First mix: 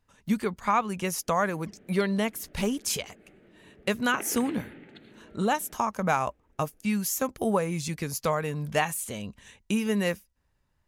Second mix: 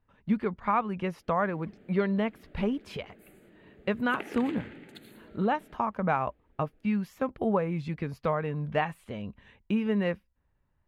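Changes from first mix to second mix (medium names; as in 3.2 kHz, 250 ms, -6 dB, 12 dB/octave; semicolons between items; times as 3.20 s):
speech: add distance through air 430 m; background: remove low-pass 3.7 kHz 12 dB/octave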